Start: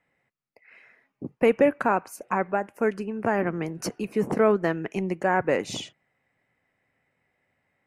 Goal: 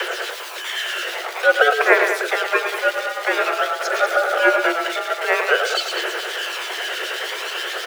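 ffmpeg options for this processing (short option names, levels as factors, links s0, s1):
-filter_complex "[0:a]aeval=exprs='val(0)+0.5*0.0668*sgn(val(0))':c=same,aphaser=in_gain=1:out_gain=1:delay=1.2:decay=0.53:speed=0.5:type=triangular,lowshelf=f=270:t=q:w=1.5:g=-8,acrossover=split=150|3200[s0][s1][s2];[s0]acompressor=threshold=0.00398:ratio=6[s3];[s3][s1][s2]amix=inputs=3:normalize=0,acrossover=split=1900[s4][s5];[s4]aeval=exprs='val(0)*(1-0.7/2+0.7/2*cos(2*PI*9.4*n/s))':c=same[s6];[s5]aeval=exprs='val(0)*(1-0.7/2-0.7/2*cos(2*PI*9.4*n/s))':c=same[s7];[s6][s7]amix=inputs=2:normalize=0,acrossover=split=4600[s8][s9];[s9]acompressor=threshold=0.00631:ratio=4:attack=1:release=60[s10];[s8][s10]amix=inputs=2:normalize=0,aeval=exprs='val(0)*sin(2*PI*670*n/s)':c=same,afreqshift=340,aecho=1:1:110.8|192.4:0.398|0.316,volume=2.66"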